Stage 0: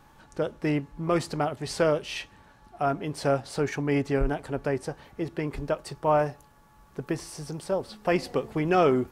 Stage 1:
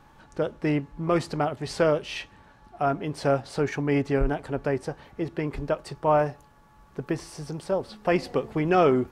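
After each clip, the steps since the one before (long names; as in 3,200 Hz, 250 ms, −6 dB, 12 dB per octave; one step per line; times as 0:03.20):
high-shelf EQ 6,900 Hz −8.5 dB
level +1.5 dB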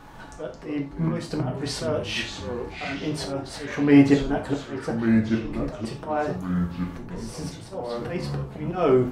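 volume swells 505 ms
reverb whose tail is shaped and stops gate 120 ms falling, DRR 1 dB
delay with pitch and tempo change per echo 135 ms, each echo −4 semitones, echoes 3, each echo −6 dB
level +7 dB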